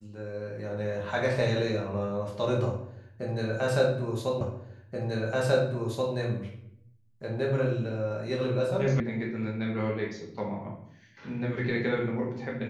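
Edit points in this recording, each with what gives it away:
4.41 s: repeat of the last 1.73 s
9.00 s: sound stops dead

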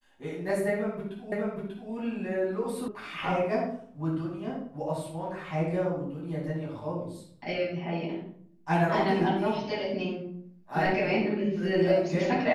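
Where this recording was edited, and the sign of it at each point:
1.32 s: repeat of the last 0.59 s
2.88 s: sound stops dead

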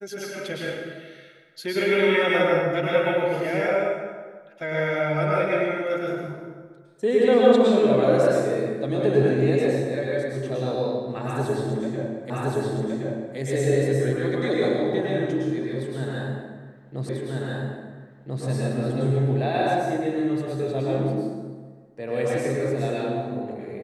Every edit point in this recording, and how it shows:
12.30 s: repeat of the last 1.07 s
17.09 s: repeat of the last 1.34 s

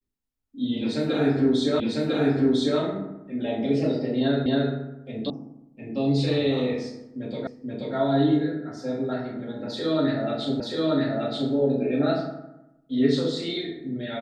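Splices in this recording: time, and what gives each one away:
1.80 s: repeat of the last 1 s
4.46 s: repeat of the last 0.27 s
5.30 s: sound stops dead
7.47 s: repeat of the last 0.48 s
10.60 s: repeat of the last 0.93 s

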